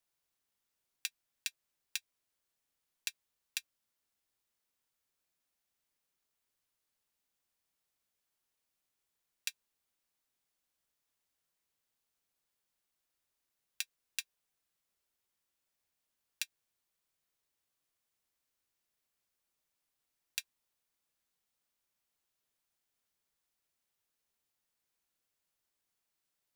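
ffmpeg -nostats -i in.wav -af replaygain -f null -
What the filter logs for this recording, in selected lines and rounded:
track_gain = +64.0 dB
track_peak = 0.183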